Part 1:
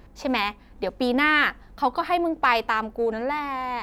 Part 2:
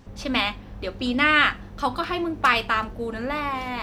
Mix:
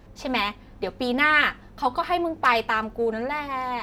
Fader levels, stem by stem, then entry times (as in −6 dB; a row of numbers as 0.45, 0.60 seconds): −1.5, −7.0 decibels; 0.00, 0.00 seconds